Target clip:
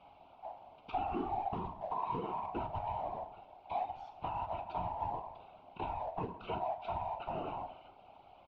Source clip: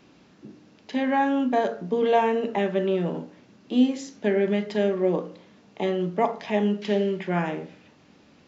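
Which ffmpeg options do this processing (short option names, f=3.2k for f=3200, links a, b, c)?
-af "afftfilt=real='real(if(lt(b,1008),b+24*(1-2*mod(floor(b/24),2)),b),0)':imag='imag(if(lt(b,1008),b+24*(1-2*mod(floor(b/24),2)),b),0)':win_size=2048:overlap=0.75,asuperstop=centerf=1800:order=8:qfactor=2.3,acompressor=threshold=-34dB:ratio=6,acrusher=bits=4:mode=log:mix=0:aa=0.000001,equalizer=f=130:w=2.5:g=-2.5,afftfilt=real='hypot(re,im)*cos(2*PI*random(0))':imag='hypot(re,im)*sin(2*PI*random(1))':win_size=512:overlap=0.75,lowpass=f=3k:w=0.5412,lowpass=f=3k:w=1.3066,aecho=1:1:11|45:0.15|0.15,adynamicequalizer=threshold=0.002:dfrequency=480:dqfactor=1.1:tfrequency=480:tqfactor=1.1:attack=5:release=100:ratio=0.375:range=2.5:mode=boostabove:tftype=bell,volume=2dB"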